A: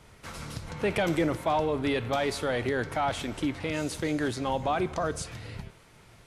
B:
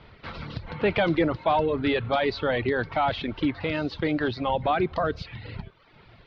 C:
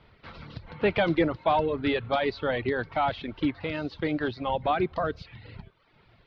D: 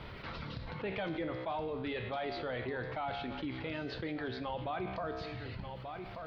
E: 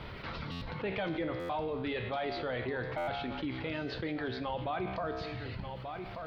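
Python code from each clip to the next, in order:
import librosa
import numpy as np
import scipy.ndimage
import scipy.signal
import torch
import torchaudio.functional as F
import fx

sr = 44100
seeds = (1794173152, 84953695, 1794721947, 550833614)

y1 = fx.dereverb_blind(x, sr, rt60_s=0.79)
y1 = scipy.signal.sosfilt(scipy.signal.butter(8, 4500.0, 'lowpass', fs=sr, output='sos'), y1)
y1 = y1 * 10.0 ** (4.5 / 20.0)
y2 = fx.upward_expand(y1, sr, threshold_db=-33.0, expansion=1.5)
y3 = fx.comb_fb(y2, sr, f0_hz=64.0, decay_s=0.94, harmonics='all', damping=0.0, mix_pct=70)
y3 = y3 + 10.0 ** (-21.0 / 20.0) * np.pad(y3, (int(1185 * sr / 1000.0), 0))[:len(y3)]
y3 = fx.env_flatten(y3, sr, amount_pct=70)
y3 = y3 * 10.0 ** (-7.5 / 20.0)
y4 = fx.buffer_glitch(y3, sr, at_s=(0.51, 1.39, 2.97), block=512, repeats=8)
y4 = y4 * 10.0 ** (2.5 / 20.0)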